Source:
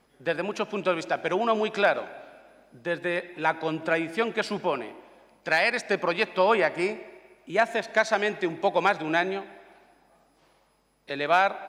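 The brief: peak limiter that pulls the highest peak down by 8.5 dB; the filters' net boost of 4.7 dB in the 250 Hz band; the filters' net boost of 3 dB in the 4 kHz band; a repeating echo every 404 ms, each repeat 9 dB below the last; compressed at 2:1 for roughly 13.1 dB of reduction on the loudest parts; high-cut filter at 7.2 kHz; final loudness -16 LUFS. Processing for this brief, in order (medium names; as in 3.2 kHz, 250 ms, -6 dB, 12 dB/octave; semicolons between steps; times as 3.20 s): low-pass 7.2 kHz; peaking EQ 250 Hz +7 dB; peaking EQ 4 kHz +4 dB; compression 2:1, threshold -41 dBFS; peak limiter -27.5 dBFS; feedback delay 404 ms, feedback 35%, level -9 dB; trim +23 dB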